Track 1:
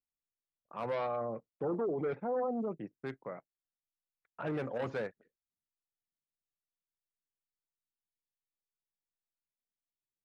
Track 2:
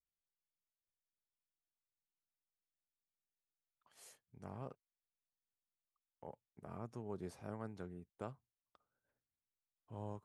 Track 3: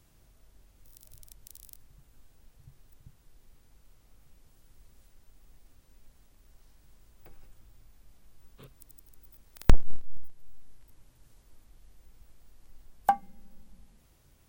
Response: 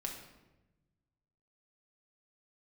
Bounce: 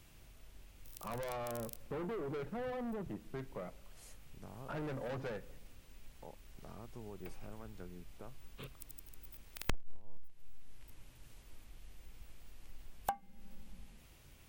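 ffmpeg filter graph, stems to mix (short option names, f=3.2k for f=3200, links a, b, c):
-filter_complex "[0:a]lowshelf=f=150:g=11,asoftclip=type=tanh:threshold=-36dB,adelay=300,volume=-0.5dB,asplit=2[a][b];[b]volume=-14.5dB[c];[1:a]alimiter=level_in=15dB:limit=-24dB:level=0:latency=1:release=465,volume=-15dB,volume=1.5dB[d];[2:a]equalizer=f=2.6k:w=1.5:g=7,volume=2dB[e];[3:a]atrim=start_sample=2205[f];[c][f]afir=irnorm=-1:irlink=0[g];[a][d][e][g]amix=inputs=4:normalize=0,acompressor=threshold=-39dB:ratio=3"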